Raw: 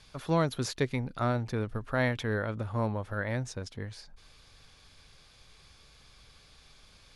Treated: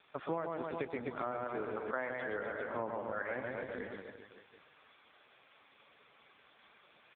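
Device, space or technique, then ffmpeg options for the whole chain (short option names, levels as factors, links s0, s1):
voicemail: -filter_complex "[0:a]asettb=1/sr,asplit=3[s0][s1][s2];[s0]atrim=end=1.314[s3];[s1]atrim=start=1.31:end=2.63,asetpts=PTS-STARTPTS,afade=t=in:d=0.004:c=qsin,afade=t=out:st=1.316:d=0.004:c=qsin,highpass=f=120:w=0.5412,highpass=f=120:w=1.3066[s4];[s2]atrim=start=2.626[s5];[s3][s4]acrossfade=d=0.004:c1=hsin:c2=qsin[s6];[s6][s5]acrossfade=d=0.004:c1=qsin:c2=hsin,highpass=340,lowpass=2700,aecho=1:1:120|252|397.2|556.9|732.6:0.631|0.398|0.251|0.158|0.1,acompressor=threshold=0.0158:ratio=12,volume=1.58" -ar 8000 -c:a libopencore_amrnb -b:a 5150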